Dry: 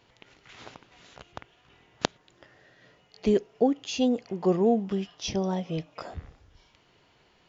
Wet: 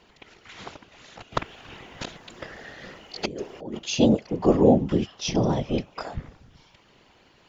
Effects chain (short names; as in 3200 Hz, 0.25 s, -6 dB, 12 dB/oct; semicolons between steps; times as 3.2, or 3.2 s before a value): 1.32–3.79 negative-ratio compressor -36 dBFS, ratio -1; whisperiser; gain +5 dB